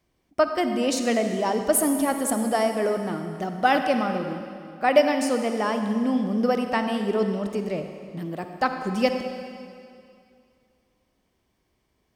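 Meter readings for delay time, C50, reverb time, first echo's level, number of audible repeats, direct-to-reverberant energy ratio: no echo, 6.5 dB, 2.4 s, no echo, no echo, 6.0 dB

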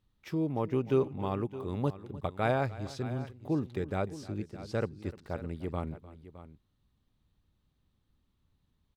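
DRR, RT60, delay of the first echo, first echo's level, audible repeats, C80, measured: no reverb, no reverb, 302 ms, -18.5 dB, 2, no reverb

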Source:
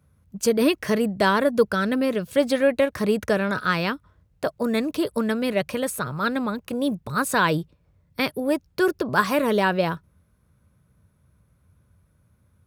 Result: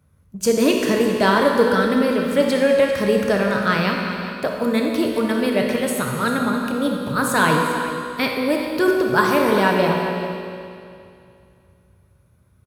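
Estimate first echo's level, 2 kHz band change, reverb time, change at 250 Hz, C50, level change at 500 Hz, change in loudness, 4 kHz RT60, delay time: -13.0 dB, +4.5 dB, 2.5 s, +4.5 dB, 1.0 dB, +4.5 dB, +4.0 dB, 2.4 s, 396 ms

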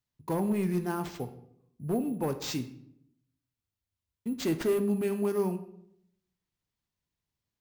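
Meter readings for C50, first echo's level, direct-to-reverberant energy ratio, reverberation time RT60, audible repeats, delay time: 13.0 dB, no echo, 8.5 dB, 0.75 s, no echo, no echo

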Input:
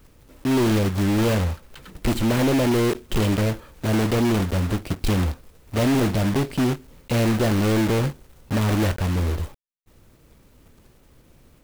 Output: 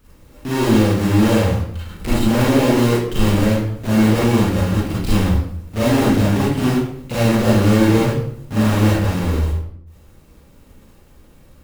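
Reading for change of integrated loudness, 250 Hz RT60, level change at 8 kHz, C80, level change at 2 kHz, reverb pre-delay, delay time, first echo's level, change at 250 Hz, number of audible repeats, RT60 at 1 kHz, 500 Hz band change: +5.5 dB, 0.95 s, +3.5 dB, 5.0 dB, +4.5 dB, 32 ms, no echo, no echo, +6.0 dB, no echo, 0.60 s, +5.0 dB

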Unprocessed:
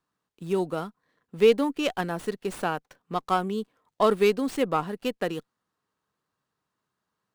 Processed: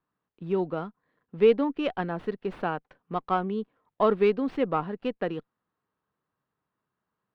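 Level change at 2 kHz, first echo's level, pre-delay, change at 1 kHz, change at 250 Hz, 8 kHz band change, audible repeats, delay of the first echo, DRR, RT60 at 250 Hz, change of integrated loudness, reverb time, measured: -3.5 dB, no echo, no reverb, -1.5 dB, -0.5 dB, under -25 dB, no echo, no echo, no reverb, no reverb, -1.0 dB, no reverb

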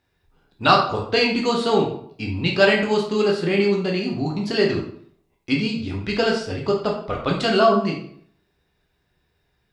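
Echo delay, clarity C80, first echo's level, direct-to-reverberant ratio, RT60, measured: no echo, 9.5 dB, no echo, -1.5 dB, 0.65 s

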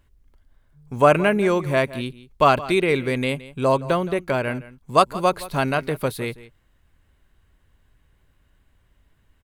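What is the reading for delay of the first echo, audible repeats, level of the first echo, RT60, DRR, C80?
169 ms, 1, -17.5 dB, no reverb, no reverb, no reverb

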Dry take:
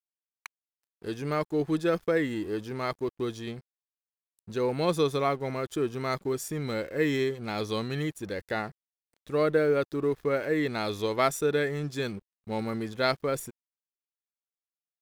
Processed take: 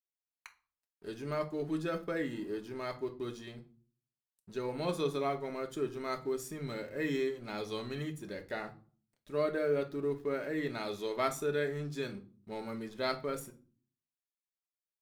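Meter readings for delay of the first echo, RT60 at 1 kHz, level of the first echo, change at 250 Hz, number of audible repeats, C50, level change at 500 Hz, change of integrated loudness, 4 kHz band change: no echo, 0.40 s, no echo, -7.0 dB, no echo, 15.0 dB, -7.0 dB, -7.0 dB, -7.5 dB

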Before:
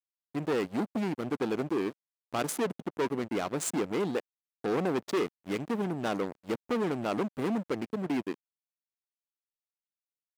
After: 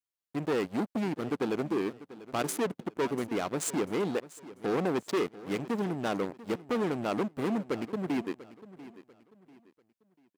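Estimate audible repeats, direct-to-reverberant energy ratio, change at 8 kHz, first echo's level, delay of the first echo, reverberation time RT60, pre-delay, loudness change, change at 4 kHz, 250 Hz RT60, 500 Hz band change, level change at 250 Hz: 2, no reverb, 0.0 dB, -17.0 dB, 692 ms, no reverb, no reverb, 0.0 dB, 0.0 dB, no reverb, 0.0 dB, 0.0 dB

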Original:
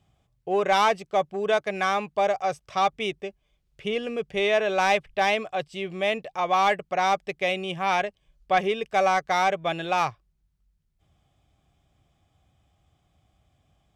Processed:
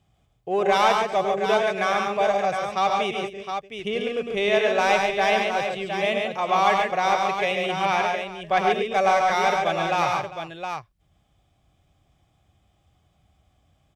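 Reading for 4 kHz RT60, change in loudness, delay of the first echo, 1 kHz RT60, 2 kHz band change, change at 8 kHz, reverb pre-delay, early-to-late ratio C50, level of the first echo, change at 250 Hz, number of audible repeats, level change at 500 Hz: no reverb, +2.0 dB, 105 ms, no reverb, +2.5 dB, +2.5 dB, no reverb, no reverb, -6.5 dB, +2.5 dB, 5, +2.5 dB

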